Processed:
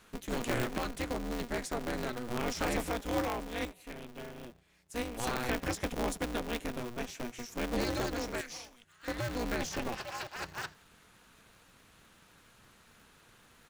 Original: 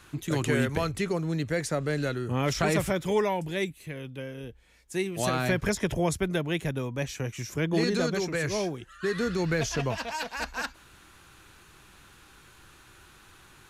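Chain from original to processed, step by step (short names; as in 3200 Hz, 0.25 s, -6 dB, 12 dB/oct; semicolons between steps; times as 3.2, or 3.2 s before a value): 8.41–9.08 passive tone stack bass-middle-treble 10-0-10; frequency-shifting echo 83 ms, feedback 37%, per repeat +120 Hz, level -24 dB; polarity switched at an audio rate 120 Hz; gain -7 dB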